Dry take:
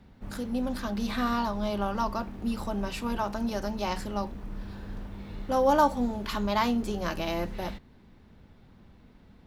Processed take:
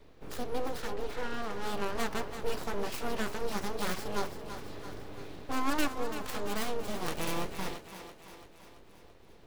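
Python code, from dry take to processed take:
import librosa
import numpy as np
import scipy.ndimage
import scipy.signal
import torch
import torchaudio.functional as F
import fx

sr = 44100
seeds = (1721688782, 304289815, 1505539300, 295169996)

p1 = fx.tracing_dist(x, sr, depth_ms=0.31)
p2 = scipy.signal.sosfilt(scipy.signal.butter(2, 110.0, 'highpass', fs=sr, output='sos'), p1)
p3 = fx.peak_eq(p2, sr, hz=1100.0, db=-4.5, octaves=2.0)
p4 = fx.rider(p3, sr, range_db=3, speed_s=0.5)
p5 = fx.spacing_loss(p4, sr, db_at_10k=26, at=(0.92, 1.49), fade=0.02)
p6 = np.abs(p5)
y = p6 + fx.echo_thinned(p6, sr, ms=336, feedback_pct=58, hz=150.0, wet_db=-10, dry=0)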